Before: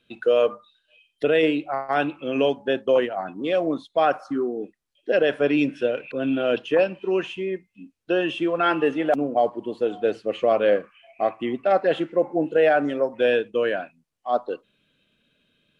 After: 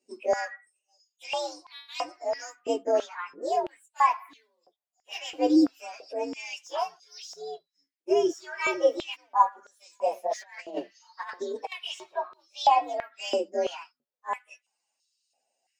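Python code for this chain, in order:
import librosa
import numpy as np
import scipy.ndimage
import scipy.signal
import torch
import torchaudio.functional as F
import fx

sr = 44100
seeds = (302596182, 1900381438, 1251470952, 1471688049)

y = fx.partial_stretch(x, sr, pct=130)
y = fx.over_compress(y, sr, threshold_db=-31.0, ratio=-1.0, at=(10.1, 11.72))
y = fx.filter_held_highpass(y, sr, hz=3.0, low_hz=340.0, high_hz=4000.0)
y = y * librosa.db_to_amplitude(-6.5)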